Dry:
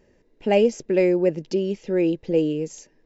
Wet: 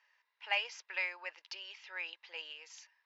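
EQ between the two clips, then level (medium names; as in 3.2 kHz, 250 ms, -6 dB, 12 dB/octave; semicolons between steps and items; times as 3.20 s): Chebyshev high-pass 990 Hz, order 4; low-pass 5.5 kHz 24 dB/octave; distance through air 69 m; 0.0 dB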